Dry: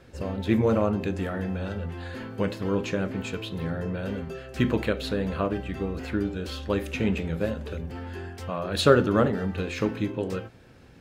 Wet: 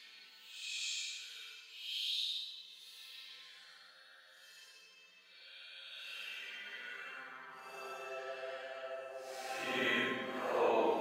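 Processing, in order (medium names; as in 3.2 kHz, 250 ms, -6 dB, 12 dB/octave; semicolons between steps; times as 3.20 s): Paulstretch 6.7×, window 0.10 s, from 3.14 s; high-pass sweep 4 kHz -> 680 Hz, 5.68–8.35 s; trim -4 dB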